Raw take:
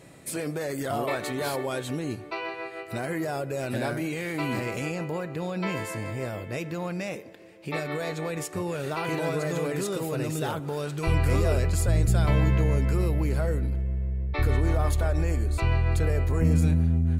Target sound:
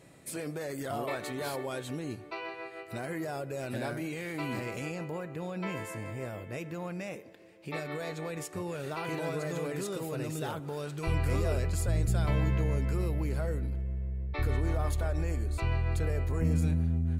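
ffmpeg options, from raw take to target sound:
-filter_complex "[0:a]asettb=1/sr,asplit=3[s0][s1][s2];[s0]atrim=end=5.104[s3];[s1]atrim=start=5.1:end=7.24,asetpts=PTS-STARTPTS,afade=t=in:d=0.004:c=qsin,afade=t=out:st=2.136:d=0.004:c=qsin,equalizer=f=4400:t=o:w=0.59:g=-5.5[s4];[s2]atrim=start=7.236[s5];[s3][s4]acrossfade=d=0.004:c1=hsin:c2=qsin[s6];[s6][s5]acrossfade=d=0.004:c1=qsin:c2=hsin,volume=0.501"

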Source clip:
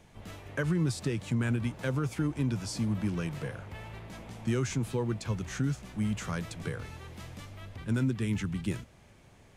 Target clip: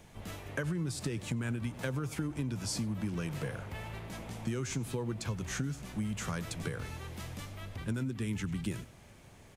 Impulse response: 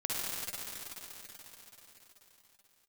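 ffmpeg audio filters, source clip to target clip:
-filter_complex "[0:a]asplit=2[s0][s1];[s1]aecho=0:1:97:0.106[s2];[s0][s2]amix=inputs=2:normalize=0,acompressor=threshold=0.0224:ratio=6,highshelf=f=9300:g=7.5,volume=1.19"

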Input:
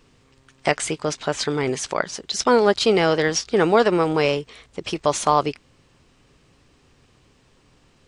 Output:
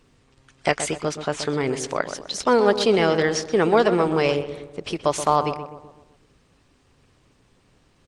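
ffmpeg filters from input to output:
-filter_complex "[0:a]asplit=2[s0][s1];[s1]adelay=126,lowpass=f=1500:p=1,volume=0.355,asplit=2[s2][s3];[s3]adelay=126,lowpass=f=1500:p=1,volume=0.54,asplit=2[s4][s5];[s5]adelay=126,lowpass=f=1500:p=1,volume=0.54,asplit=2[s6][s7];[s7]adelay=126,lowpass=f=1500:p=1,volume=0.54,asplit=2[s8][s9];[s9]adelay=126,lowpass=f=1500:p=1,volume=0.54,asplit=2[s10][s11];[s11]adelay=126,lowpass=f=1500:p=1,volume=0.54[s12];[s0][s2][s4][s6][s8][s10][s12]amix=inputs=7:normalize=0,volume=0.891" -ar 48000 -c:a libopus -b:a 24k

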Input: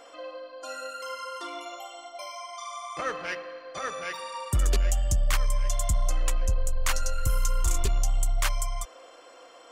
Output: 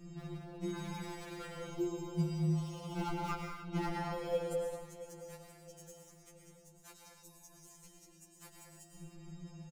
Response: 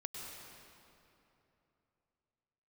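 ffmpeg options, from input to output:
-filter_complex "[0:a]acompressor=threshold=0.0158:ratio=10,afwtdn=0.0112,asoftclip=type=hard:threshold=0.0141,highpass=f=530:t=q:w=4.9,highshelf=f=6400:g=10,asplit=2[s0][s1];[s1]adelay=671,lowpass=f=4100:p=1,volume=0.188,asplit=2[s2][s3];[s3]adelay=671,lowpass=f=4100:p=1,volume=0.42,asplit=2[s4][s5];[s5]adelay=671,lowpass=f=4100:p=1,volume=0.42,asplit=2[s6][s7];[s7]adelay=671,lowpass=f=4100:p=1,volume=0.42[s8];[s0][s2][s4][s6][s8]amix=inputs=5:normalize=0[s9];[1:a]atrim=start_sample=2205,afade=t=out:st=0.37:d=0.01,atrim=end_sample=16758[s10];[s9][s10]afir=irnorm=-1:irlink=0,afreqshift=-430,asettb=1/sr,asplit=3[s11][s12][s13];[s11]atrim=end=1.654[s14];[s12]atrim=start=1.65:end=3.8,asetpts=PTS-STARTPTS,afade=t=in:d=0.004:c=qsin,afade=t=out:st=2.146:d=0.004:c=qsin,asuperstop=centerf=1800:order=8:qfactor=6.1[s15];[s13]atrim=start=3.796[s16];[s14][s15]acrossfade=d=0.004:c1=hsin:c2=qsin[s17];[s17][s16]acrossfade=d=0.004:c1=qsin:c2=hsin,afftfilt=real='re*2.83*eq(mod(b,8),0)':imag='im*2.83*eq(mod(b,8),0)':win_size=2048:overlap=0.75,volume=2.51"

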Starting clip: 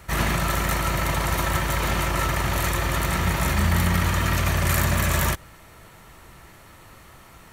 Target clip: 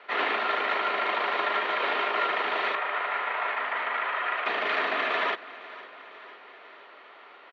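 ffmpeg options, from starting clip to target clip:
-filter_complex "[0:a]asettb=1/sr,asplit=3[s0][s1][s2];[s0]atrim=end=2.754[s3];[s1]atrim=start=2.75:end=4.46,asetpts=PTS-STARTPTS,afade=t=in:d=0.004:c=qsin,afade=t=out:st=1.706:d=0.004:c=qsin,acrossover=split=480 2700:gain=0.158 1 0.158[s4][s5][s6];[s4][s5][s6]amix=inputs=3:normalize=0[s7];[s2]atrim=start=4.456[s8];[s3][s7]acrossfade=d=0.004:c1=hsin:c2=qsin[s9];[s9][s8]acrossfade=d=0.004:c1=qsin:c2=hsin,aecho=1:1:503|1006|1509|2012|2515:0.126|0.0743|0.0438|0.0259|0.0153,highpass=f=320:t=q:w=0.5412,highpass=f=320:t=q:w=1.307,lowpass=f=3600:t=q:w=0.5176,lowpass=f=3600:t=q:w=0.7071,lowpass=f=3600:t=q:w=1.932,afreqshift=57"

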